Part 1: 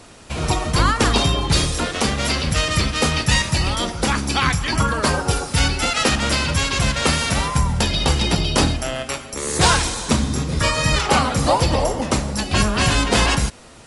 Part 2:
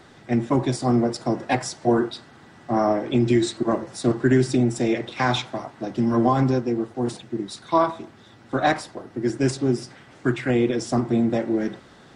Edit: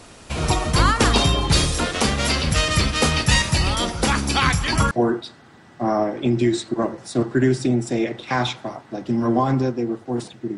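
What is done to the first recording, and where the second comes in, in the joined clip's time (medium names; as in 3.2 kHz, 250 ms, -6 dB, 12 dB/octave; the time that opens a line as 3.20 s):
part 1
4.91 s: go over to part 2 from 1.80 s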